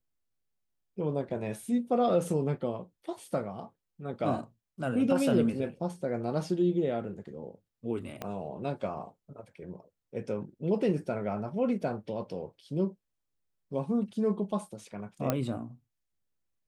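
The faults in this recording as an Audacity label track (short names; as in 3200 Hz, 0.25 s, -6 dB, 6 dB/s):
8.220000	8.220000	pop -21 dBFS
15.300000	15.300000	pop -13 dBFS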